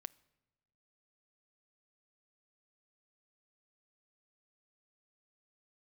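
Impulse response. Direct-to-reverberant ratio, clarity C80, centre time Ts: 17.0 dB, 25.5 dB, 2 ms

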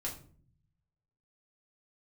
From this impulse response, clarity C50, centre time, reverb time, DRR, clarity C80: 9.5 dB, 21 ms, 0.50 s, -3.5 dB, 14.0 dB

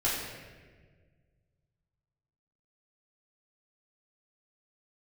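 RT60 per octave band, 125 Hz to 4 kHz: 2.7 s, 2.1 s, 1.8 s, 1.2 s, 1.4 s, 1.0 s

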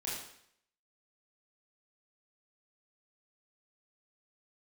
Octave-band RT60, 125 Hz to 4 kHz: 0.65 s, 0.65 s, 0.65 s, 0.70 s, 0.70 s, 0.65 s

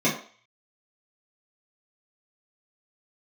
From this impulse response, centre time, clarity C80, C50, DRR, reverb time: 28 ms, 12.0 dB, 7.5 dB, -9.5 dB, 0.45 s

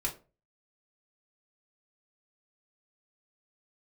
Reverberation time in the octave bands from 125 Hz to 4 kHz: 0.50 s, 0.35 s, 0.40 s, 0.30 s, 0.25 s, 0.20 s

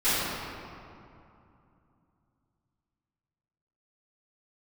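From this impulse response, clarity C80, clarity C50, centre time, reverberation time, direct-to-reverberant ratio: -2.5 dB, -5.0 dB, 175 ms, 2.7 s, -18.5 dB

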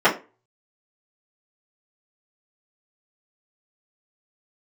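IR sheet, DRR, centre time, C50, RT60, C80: -11.0 dB, 18 ms, 12.5 dB, 0.30 s, 18.5 dB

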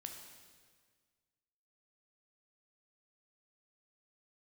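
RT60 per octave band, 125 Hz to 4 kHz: 2.0 s, 1.8 s, 1.7 s, 1.6 s, 1.6 s, 1.5 s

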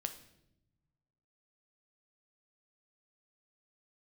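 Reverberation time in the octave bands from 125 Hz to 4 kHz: 1.9 s, 1.5 s, 1.0 s, 0.70 s, 0.70 s, 0.65 s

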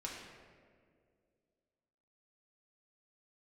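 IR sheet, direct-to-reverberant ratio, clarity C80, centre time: -4.0 dB, 3.5 dB, 76 ms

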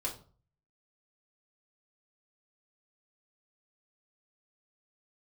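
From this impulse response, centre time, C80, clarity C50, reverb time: 18 ms, 15.5 dB, 10.5 dB, 0.40 s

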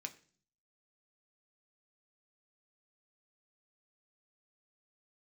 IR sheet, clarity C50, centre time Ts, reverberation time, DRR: 16.5 dB, 6 ms, 0.45 s, 4.5 dB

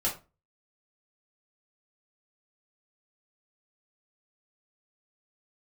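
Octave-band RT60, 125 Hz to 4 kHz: 0.40 s, 0.35 s, 0.30 s, 0.30 s, 0.25 s, 0.20 s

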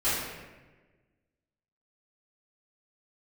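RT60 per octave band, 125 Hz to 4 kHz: 1.7 s, 1.6 s, 1.4 s, 1.1 s, 1.2 s, 0.85 s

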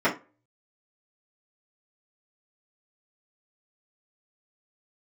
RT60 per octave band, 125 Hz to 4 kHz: 0.50 s, 0.35 s, 0.30 s, 0.30 s, 0.25 s, 0.20 s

